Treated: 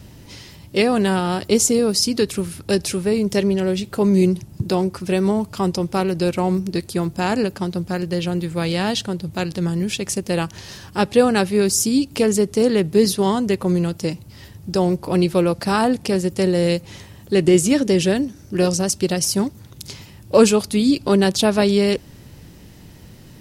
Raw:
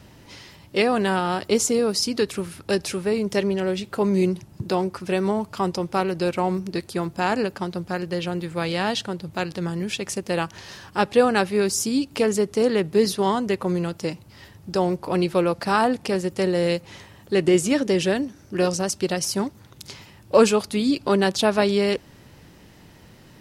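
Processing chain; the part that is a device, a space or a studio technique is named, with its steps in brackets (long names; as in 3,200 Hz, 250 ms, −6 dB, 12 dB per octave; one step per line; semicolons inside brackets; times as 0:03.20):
smiley-face EQ (low-shelf EQ 190 Hz +6 dB; parametric band 1,200 Hz −4.5 dB 2.3 octaves; high-shelf EQ 6,700 Hz +5 dB)
level +3.5 dB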